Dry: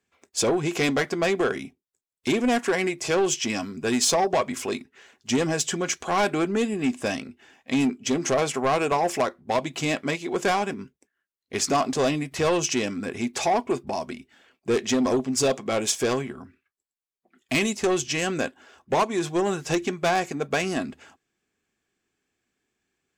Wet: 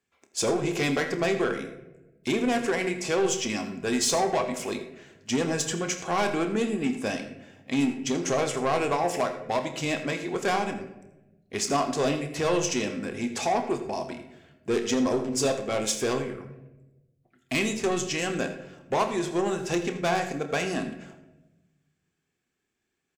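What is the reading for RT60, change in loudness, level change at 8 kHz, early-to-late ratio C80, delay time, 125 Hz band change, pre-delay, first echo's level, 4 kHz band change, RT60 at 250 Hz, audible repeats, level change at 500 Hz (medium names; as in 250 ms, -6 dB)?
1.0 s, -2.5 dB, -3.0 dB, 10.0 dB, 82 ms, -1.5 dB, 29 ms, -15.5 dB, -3.0 dB, 1.5 s, 1, -2.5 dB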